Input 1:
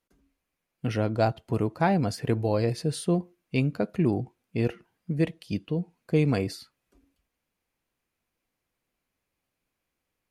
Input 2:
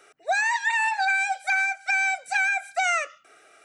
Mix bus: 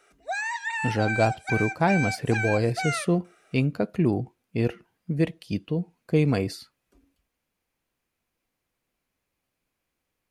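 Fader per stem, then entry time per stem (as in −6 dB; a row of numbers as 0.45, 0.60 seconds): +1.5, −6.5 decibels; 0.00, 0.00 seconds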